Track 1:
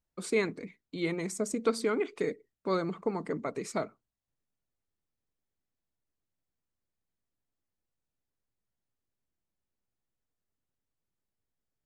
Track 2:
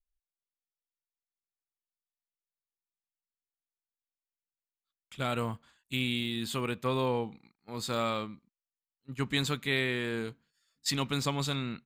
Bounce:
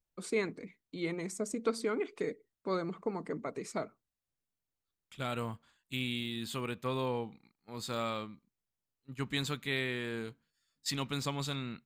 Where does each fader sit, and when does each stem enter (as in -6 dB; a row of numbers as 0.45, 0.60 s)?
-4.0, -4.5 dB; 0.00, 0.00 s